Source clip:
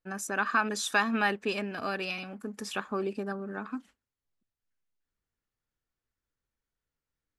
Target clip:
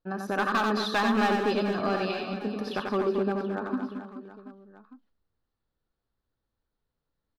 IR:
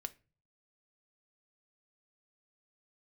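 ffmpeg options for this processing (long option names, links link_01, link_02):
-af "firequalizer=gain_entry='entry(840,0);entry(2300,-12);entry(4100,-2);entry(7500,-30);entry(11000,-16)':delay=0.05:min_phase=1,volume=26dB,asoftclip=hard,volume=-26dB,aecho=1:1:90|225|427.5|731.2|1187:0.631|0.398|0.251|0.158|0.1,volume=5.5dB"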